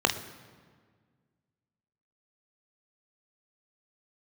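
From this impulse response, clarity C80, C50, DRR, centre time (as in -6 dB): 13.0 dB, 11.5 dB, 4.5 dB, 19 ms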